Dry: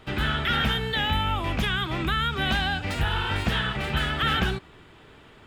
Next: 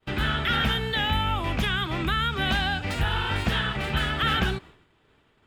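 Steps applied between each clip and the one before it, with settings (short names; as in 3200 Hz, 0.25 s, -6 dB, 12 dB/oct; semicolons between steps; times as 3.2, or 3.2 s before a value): expander -41 dBFS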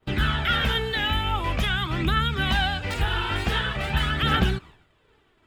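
phaser 0.46 Hz, delay 3.1 ms, feedback 43%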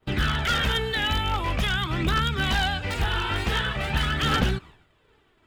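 one-sided fold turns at -18.5 dBFS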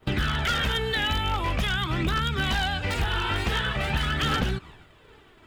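compressor 2.5:1, threshold -37 dBFS, peak gain reduction 13.5 dB; gain +9 dB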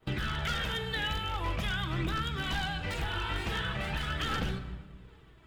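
shoebox room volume 930 m³, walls mixed, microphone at 0.68 m; gain -8 dB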